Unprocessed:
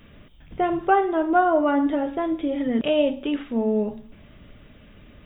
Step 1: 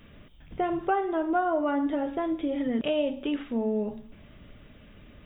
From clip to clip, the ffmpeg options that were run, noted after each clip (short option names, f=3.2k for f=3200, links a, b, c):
-af "acompressor=threshold=-23dB:ratio=2,volume=-2.5dB"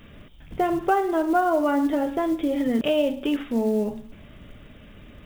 -af "acontrast=23,acrusher=bits=7:mode=log:mix=0:aa=0.000001"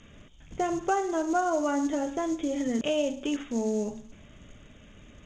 -af "lowpass=f=6.6k:t=q:w=14,volume=-5.5dB"